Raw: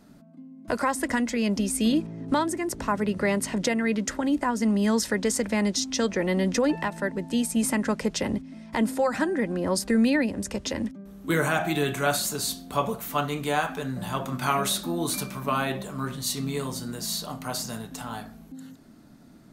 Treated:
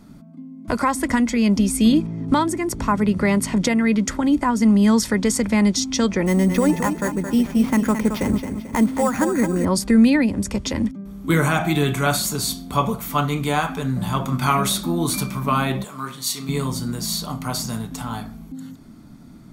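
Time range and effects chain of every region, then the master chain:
0:06.26–0:09.65: bass and treble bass −1 dB, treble −14 dB + repeating echo 220 ms, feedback 38%, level −8 dB + sample-rate reduction 8,400 Hz
0:15.84–0:16.49: high-pass filter 760 Hz 6 dB per octave + double-tracking delay 38 ms −13.5 dB
whole clip: low-shelf EQ 230 Hz +6 dB; comb filter 0.9 ms, depth 31%; level +4 dB

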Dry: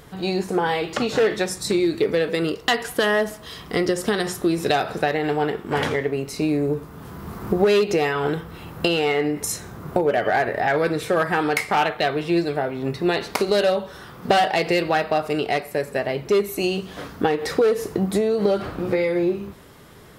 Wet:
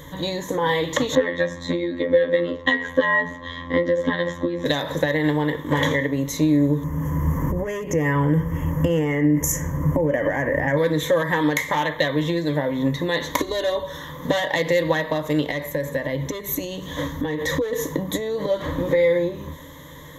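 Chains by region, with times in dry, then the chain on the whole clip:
0:01.15–0:04.66: low-pass filter 2,300 Hz + comb filter 3.7 ms, depth 99% + phases set to zero 86.5 Hz
0:06.84–0:10.77: low-shelf EQ 300 Hz +10.5 dB + downward compressor 2.5 to 1, threshold −17 dBFS + Butterworth band-reject 3,900 Hz, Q 1.6
0:13.38–0:13.83: low-shelf EQ 260 Hz +8 dB + comb filter 2.8 ms, depth 79%
0:15.51–0:17.73: low-shelf EQ 120 Hz +7 dB + downward compressor 10 to 1, threshold −25 dBFS
whole clip: downward compressor, threshold −22 dBFS; EQ curve with evenly spaced ripples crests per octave 1.1, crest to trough 17 dB; level +2 dB

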